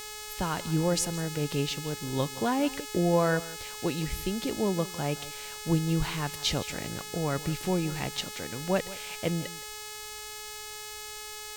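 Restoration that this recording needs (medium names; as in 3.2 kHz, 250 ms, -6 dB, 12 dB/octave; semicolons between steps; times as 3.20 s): de-hum 424.8 Hz, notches 21; noise print and reduce 30 dB; inverse comb 168 ms -17.5 dB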